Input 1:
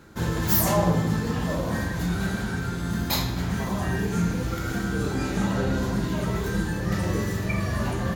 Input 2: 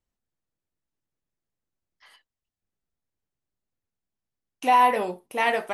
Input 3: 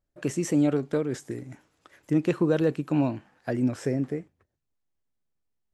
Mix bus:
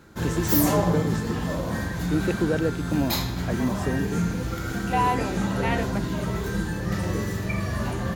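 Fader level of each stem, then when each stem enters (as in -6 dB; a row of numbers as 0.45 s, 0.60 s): -1.0 dB, -5.5 dB, -1.5 dB; 0.00 s, 0.25 s, 0.00 s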